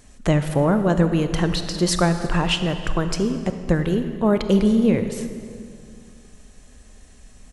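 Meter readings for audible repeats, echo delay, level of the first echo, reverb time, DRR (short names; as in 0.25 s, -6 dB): 1, 0.331 s, -22.5 dB, 2.3 s, 8.5 dB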